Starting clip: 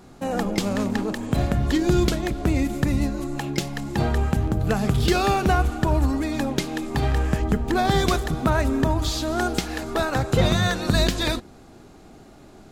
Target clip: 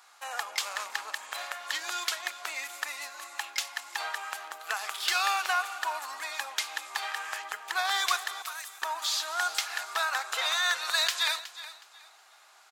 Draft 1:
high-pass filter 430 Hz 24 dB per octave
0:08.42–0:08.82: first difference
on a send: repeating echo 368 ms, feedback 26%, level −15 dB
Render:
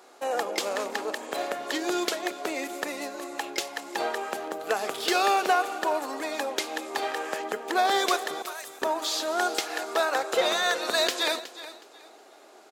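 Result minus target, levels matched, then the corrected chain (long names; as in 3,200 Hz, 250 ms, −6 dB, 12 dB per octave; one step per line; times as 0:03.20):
500 Hz band +14.0 dB
high-pass filter 980 Hz 24 dB per octave
0:08.42–0:08.82: first difference
on a send: repeating echo 368 ms, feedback 26%, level −15 dB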